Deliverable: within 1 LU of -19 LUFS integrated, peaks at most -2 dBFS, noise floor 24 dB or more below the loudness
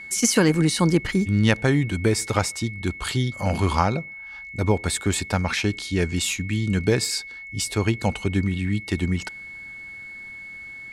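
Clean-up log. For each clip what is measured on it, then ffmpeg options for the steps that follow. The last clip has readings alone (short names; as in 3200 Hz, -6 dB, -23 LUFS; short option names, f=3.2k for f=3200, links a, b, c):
steady tone 2200 Hz; tone level -36 dBFS; loudness -23.0 LUFS; peak -5.0 dBFS; loudness target -19.0 LUFS
-> -af "bandreject=f=2.2k:w=30"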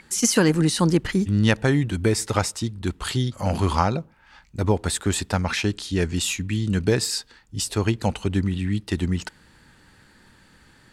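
steady tone none; loudness -23.5 LUFS; peak -5.0 dBFS; loudness target -19.0 LUFS
-> -af "volume=4.5dB,alimiter=limit=-2dB:level=0:latency=1"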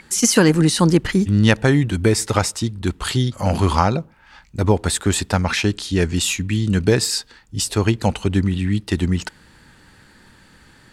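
loudness -19.0 LUFS; peak -2.0 dBFS; noise floor -51 dBFS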